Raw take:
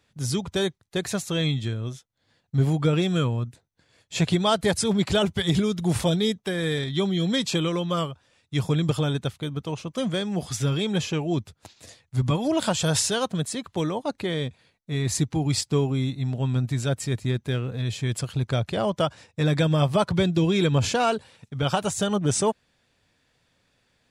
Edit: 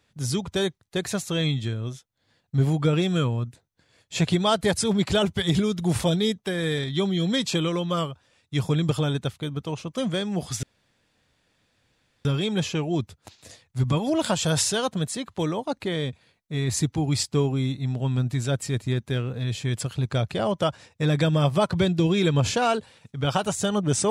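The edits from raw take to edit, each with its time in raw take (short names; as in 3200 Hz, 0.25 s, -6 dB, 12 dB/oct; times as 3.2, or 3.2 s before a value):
10.63 insert room tone 1.62 s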